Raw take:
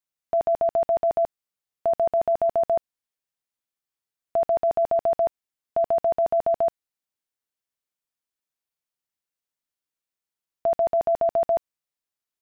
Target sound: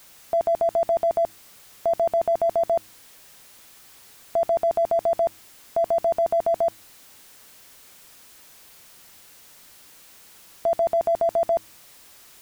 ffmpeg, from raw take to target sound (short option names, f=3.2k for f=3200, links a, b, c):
-af "aeval=exprs='val(0)+0.5*0.00794*sgn(val(0))':c=same,bandreject=f=106.9:t=h:w=4,bandreject=f=213.8:t=h:w=4,bandreject=f=320.7:t=h:w=4"